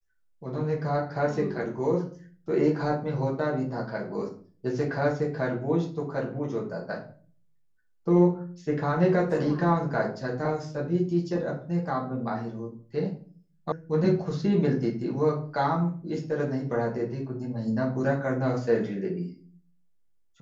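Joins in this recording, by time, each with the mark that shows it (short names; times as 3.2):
13.72 sound cut off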